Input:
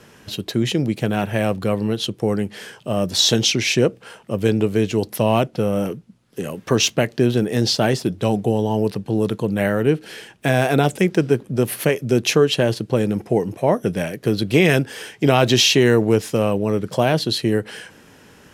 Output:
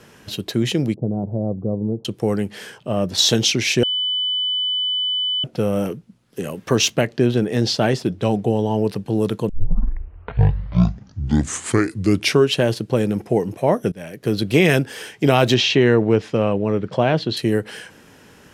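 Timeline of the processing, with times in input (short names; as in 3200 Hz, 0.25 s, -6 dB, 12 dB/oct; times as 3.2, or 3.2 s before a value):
0.94–2.05 Gaussian blur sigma 14 samples
2.78–3.18 high shelf 4900 Hz -11 dB
3.83–5.44 bleep 3000 Hz -18.5 dBFS
7.01–8.9 high shelf 8700 Hz -11.5 dB
9.49 tape start 3.11 s
13.92–14.36 fade in, from -21 dB
15.54–17.37 LPF 3400 Hz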